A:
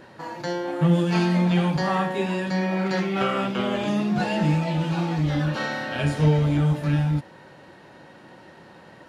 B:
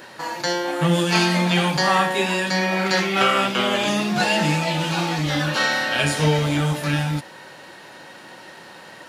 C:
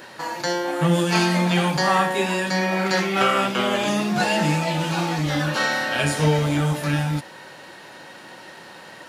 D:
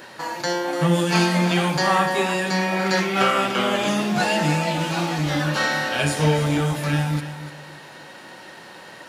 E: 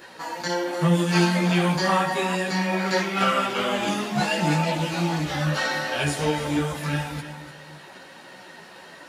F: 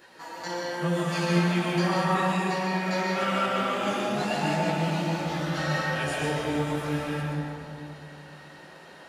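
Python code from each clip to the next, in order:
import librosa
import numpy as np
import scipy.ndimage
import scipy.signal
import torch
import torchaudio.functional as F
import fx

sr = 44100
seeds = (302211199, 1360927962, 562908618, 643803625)

y1 = fx.tilt_eq(x, sr, slope=3.0)
y1 = y1 * librosa.db_to_amplitude(6.5)
y2 = fx.dynamic_eq(y1, sr, hz=3400.0, q=0.83, threshold_db=-35.0, ratio=4.0, max_db=-4)
y3 = fx.echo_feedback(y2, sr, ms=295, feedback_pct=30, wet_db=-12)
y4 = fx.chorus_voices(y3, sr, voices=4, hz=0.8, base_ms=14, depth_ms=3.1, mix_pct=50)
y5 = fx.rev_freeverb(y4, sr, rt60_s=2.7, hf_ratio=0.3, predelay_ms=90, drr_db=-3.5)
y5 = y5 * librosa.db_to_amplitude(-8.5)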